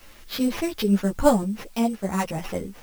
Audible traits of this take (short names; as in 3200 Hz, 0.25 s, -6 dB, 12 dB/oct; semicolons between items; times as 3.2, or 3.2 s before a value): aliases and images of a low sample rate 8300 Hz, jitter 0%; random-step tremolo; a quantiser's noise floor 10-bit, dither triangular; a shimmering, thickened sound